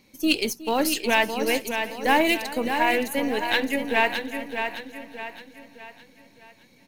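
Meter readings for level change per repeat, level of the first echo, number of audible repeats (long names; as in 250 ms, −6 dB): repeats not evenly spaced, −17.0 dB, 10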